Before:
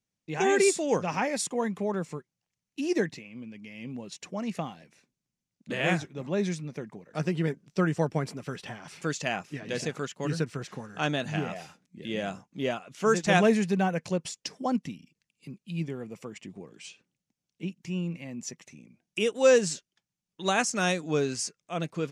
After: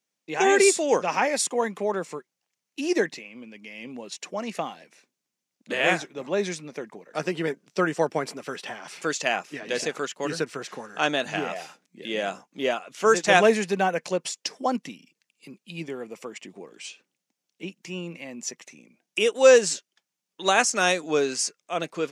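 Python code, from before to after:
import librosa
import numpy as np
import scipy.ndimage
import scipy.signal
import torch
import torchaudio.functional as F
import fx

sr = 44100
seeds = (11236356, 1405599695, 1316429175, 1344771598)

y = scipy.signal.sosfilt(scipy.signal.butter(2, 350.0, 'highpass', fs=sr, output='sos'), x)
y = F.gain(torch.from_numpy(y), 6.0).numpy()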